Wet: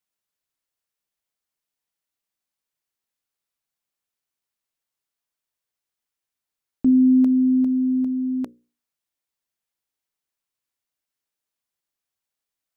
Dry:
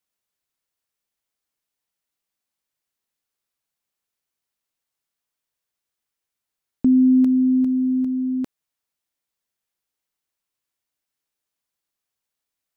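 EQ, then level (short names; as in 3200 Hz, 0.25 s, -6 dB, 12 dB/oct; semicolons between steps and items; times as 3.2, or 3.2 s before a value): notches 60/120/180/240/300/360/420/480/540 Hz; dynamic EQ 630 Hz, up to +7 dB, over -33 dBFS, Q 0.73; -2.5 dB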